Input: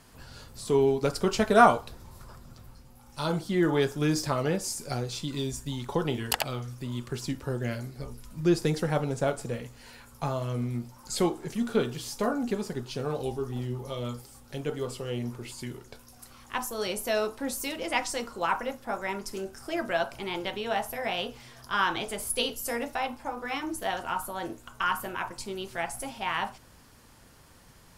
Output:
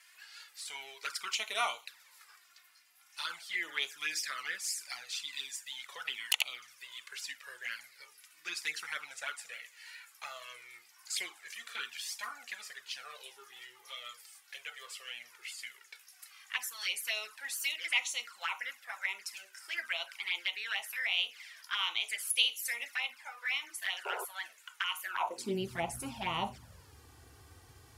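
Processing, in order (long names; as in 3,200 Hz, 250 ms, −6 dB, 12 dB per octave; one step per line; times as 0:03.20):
high-pass filter sweep 2,000 Hz → 79 Hz, 0:25.04–0:25.73
flanger swept by the level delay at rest 3.1 ms, full sweep at −28 dBFS
sound drawn into the spectrogram noise, 0:24.05–0:24.25, 370–1,100 Hz −41 dBFS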